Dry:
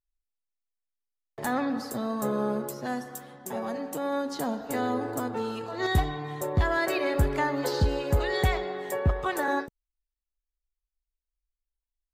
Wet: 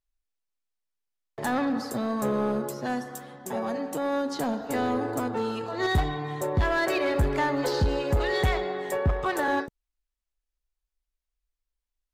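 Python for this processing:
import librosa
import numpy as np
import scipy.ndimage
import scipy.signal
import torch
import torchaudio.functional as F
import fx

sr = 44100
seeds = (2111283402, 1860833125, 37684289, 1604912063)

p1 = fx.high_shelf(x, sr, hz=11000.0, db=-8.5)
p2 = 10.0 ** (-25.5 / 20.0) * (np.abs((p1 / 10.0 ** (-25.5 / 20.0) + 3.0) % 4.0 - 2.0) - 1.0)
y = p1 + F.gain(torch.from_numpy(p2), -8.5).numpy()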